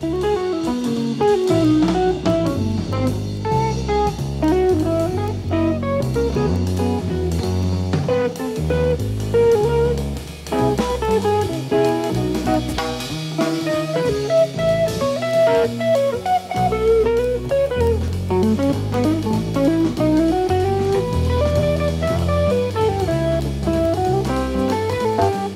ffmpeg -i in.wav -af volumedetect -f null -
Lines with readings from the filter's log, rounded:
mean_volume: -18.4 dB
max_volume: -4.4 dB